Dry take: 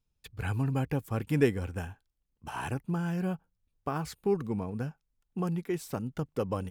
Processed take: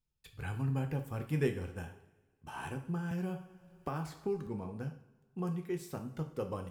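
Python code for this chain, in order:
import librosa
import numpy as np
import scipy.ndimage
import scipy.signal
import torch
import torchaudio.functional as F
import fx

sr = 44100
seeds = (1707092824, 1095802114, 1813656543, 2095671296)

y = fx.rev_double_slope(x, sr, seeds[0], early_s=0.49, late_s=1.6, knee_db=-16, drr_db=4.5)
y = fx.band_squash(y, sr, depth_pct=70, at=(3.11, 4.47))
y = y * librosa.db_to_amplitude(-7.5)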